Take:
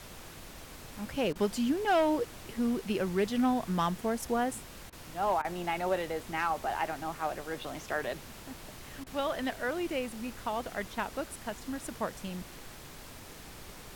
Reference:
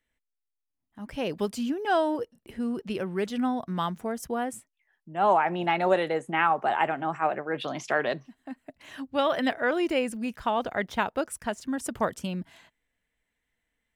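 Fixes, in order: clip repair -21 dBFS; interpolate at 1.33/4.90/5.42/9.04 s, 24 ms; noise print and reduce 30 dB; gain correction +7.5 dB, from 4.62 s

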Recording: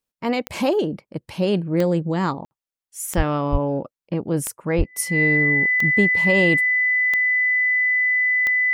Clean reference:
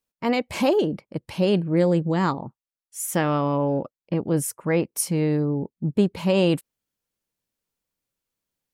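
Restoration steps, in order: de-click; band-stop 2 kHz, Q 30; de-plosive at 3.16/3.51/4.77 s; room tone fill 2.45–2.51 s

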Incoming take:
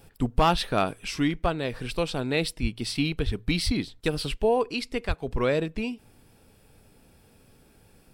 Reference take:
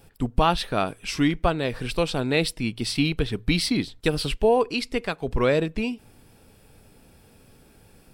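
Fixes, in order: clip repair -13.5 dBFS; de-plosive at 2.61/3.25/3.65/5.07 s; trim 0 dB, from 1.08 s +3.5 dB

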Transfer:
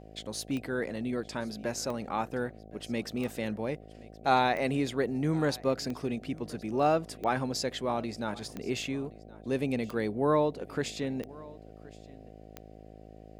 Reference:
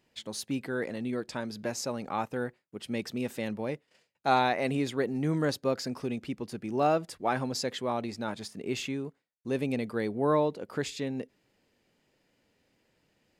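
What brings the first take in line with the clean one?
de-click; de-hum 53.4 Hz, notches 14; inverse comb 1072 ms -22 dB

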